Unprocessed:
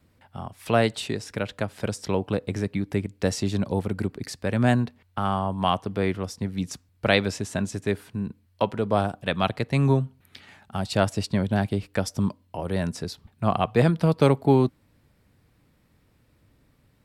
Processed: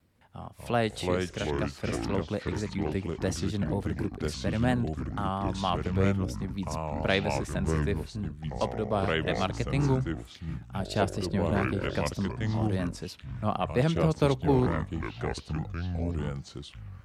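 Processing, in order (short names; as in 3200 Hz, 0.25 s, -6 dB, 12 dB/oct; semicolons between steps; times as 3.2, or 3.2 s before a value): echoes that change speed 0.15 s, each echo -4 st, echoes 3; vibrato 4.3 Hz 53 cents; gain -6 dB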